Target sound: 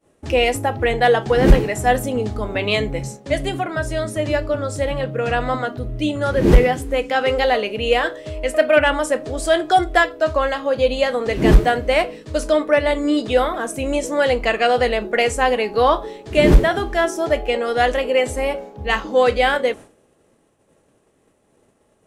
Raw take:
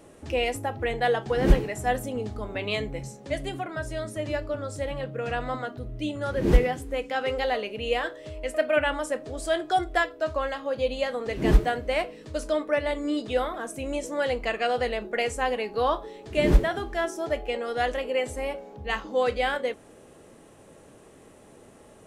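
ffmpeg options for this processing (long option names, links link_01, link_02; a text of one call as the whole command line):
ffmpeg -i in.wav -af "agate=range=-33dB:threshold=-39dB:ratio=3:detection=peak,aeval=exprs='0.596*sin(PI/2*1.41*val(0)/0.596)':channel_layout=same,volume=2.5dB" out.wav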